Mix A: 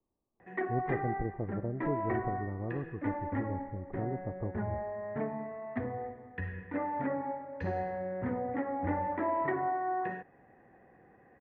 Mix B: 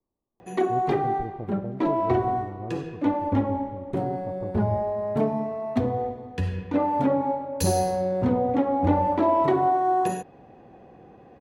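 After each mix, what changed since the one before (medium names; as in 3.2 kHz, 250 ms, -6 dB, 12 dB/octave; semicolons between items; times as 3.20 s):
background: remove four-pole ladder low-pass 2 kHz, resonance 75%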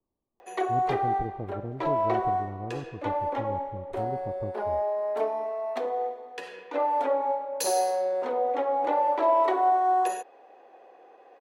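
background: add high-pass 450 Hz 24 dB/octave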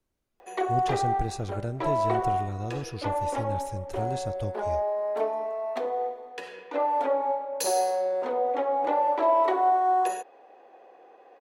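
speech: remove rippled Chebyshev low-pass 1.2 kHz, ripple 3 dB; master: add bass shelf 90 Hz +6.5 dB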